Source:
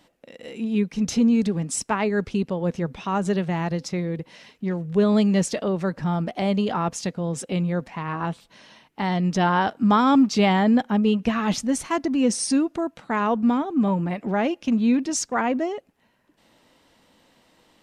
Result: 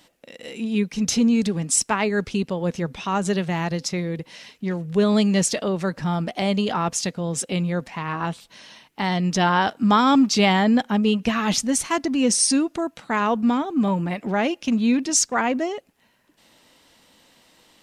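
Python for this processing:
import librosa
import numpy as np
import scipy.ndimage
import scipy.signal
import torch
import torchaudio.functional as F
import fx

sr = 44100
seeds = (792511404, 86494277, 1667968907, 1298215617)

y = fx.high_shelf(x, sr, hz=2200.0, db=8.5)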